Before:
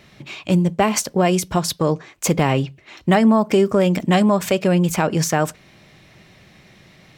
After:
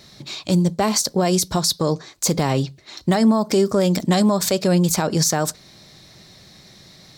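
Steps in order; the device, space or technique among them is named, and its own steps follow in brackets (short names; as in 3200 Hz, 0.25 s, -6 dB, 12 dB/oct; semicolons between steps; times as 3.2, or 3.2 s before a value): over-bright horn tweeter (resonant high shelf 3400 Hz +6.5 dB, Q 3; limiter -8.5 dBFS, peak gain reduction 9 dB)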